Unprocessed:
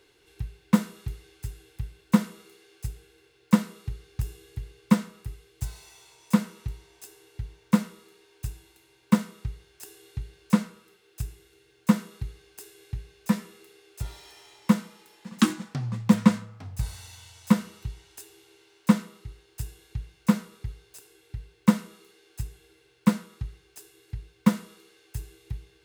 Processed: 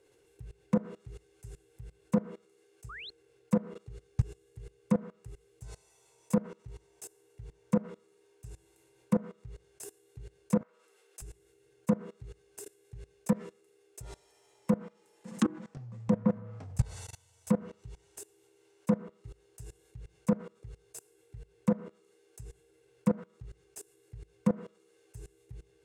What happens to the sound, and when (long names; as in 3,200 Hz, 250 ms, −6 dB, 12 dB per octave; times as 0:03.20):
0:02.89–0:03.10: sound drawn into the spectrogram rise 1,100–4,400 Hz −30 dBFS
0:10.61–0:11.22: high-pass filter 600 Hz
whole clip: treble cut that deepens with the level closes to 1,100 Hz, closed at −18 dBFS; octave-band graphic EQ 125/500/4,000/8,000 Hz +6/+11/−6/+8 dB; output level in coarse steps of 22 dB